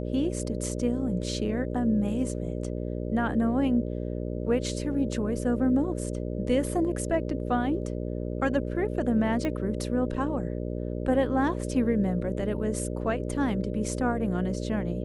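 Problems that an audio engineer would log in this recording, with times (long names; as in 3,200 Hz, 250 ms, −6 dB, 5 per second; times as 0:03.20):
mains buzz 60 Hz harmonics 10 −32 dBFS
0:09.45: click −18 dBFS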